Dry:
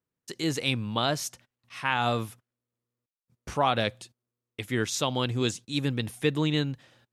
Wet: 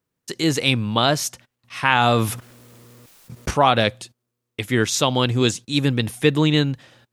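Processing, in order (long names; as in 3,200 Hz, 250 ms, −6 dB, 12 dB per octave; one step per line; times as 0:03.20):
0:01.83–0:03.51: envelope flattener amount 50%
level +8.5 dB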